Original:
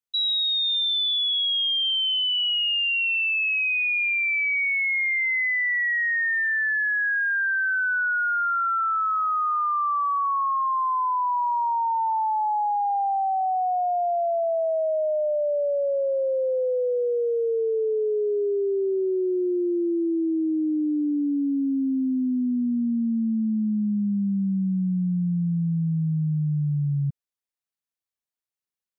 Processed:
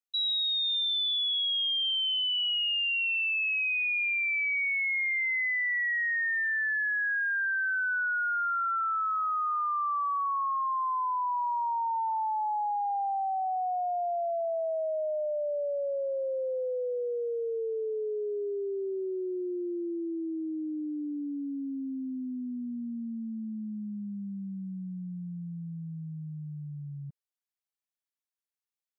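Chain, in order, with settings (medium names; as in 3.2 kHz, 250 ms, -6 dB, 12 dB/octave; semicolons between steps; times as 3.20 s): high-pass 470 Hz 6 dB/octave; trim -5 dB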